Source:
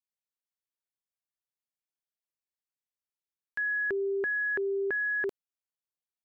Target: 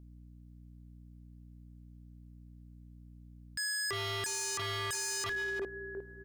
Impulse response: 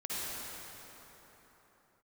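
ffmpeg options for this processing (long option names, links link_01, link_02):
-filter_complex "[0:a]asplit=2[link_01][link_02];[link_02]adelay=355,lowpass=frequency=1200:poles=1,volume=-10dB,asplit=2[link_03][link_04];[link_04]adelay=355,lowpass=frequency=1200:poles=1,volume=0.48,asplit=2[link_05][link_06];[link_06]adelay=355,lowpass=frequency=1200:poles=1,volume=0.48,asplit=2[link_07][link_08];[link_08]adelay=355,lowpass=frequency=1200:poles=1,volume=0.48,asplit=2[link_09][link_10];[link_10]adelay=355,lowpass=frequency=1200:poles=1,volume=0.48[link_11];[link_01][link_03][link_05][link_07][link_09][link_11]amix=inputs=6:normalize=0,aeval=exprs='val(0)+0.00126*(sin(2*PI*60*n/s)+sin(2*PI*2*60*n/s)/2+sin(2*PI*3*60*n/s)/3+sin(2*PI*4*60*n/s)/4+sin(2*PI*5*60*n/s)/5)':channel_layout=same,asplit=2[link_12][link_13];[1:a]atrim=start_sample=2205,lowpass=2200,lowshelf=frequency=220:gain=6[link_14];[link_13][link_14]afir=irnorm=-1:irlink=0,volume=-25.5dB[link_15];[link_12][link_15]amix=inputs=2:normalize=0,aeval=exprs='0.0141*(abs(mod(val(0)/0.0141+3,4)-2)-1)':channel_layout=same,volume=6dB"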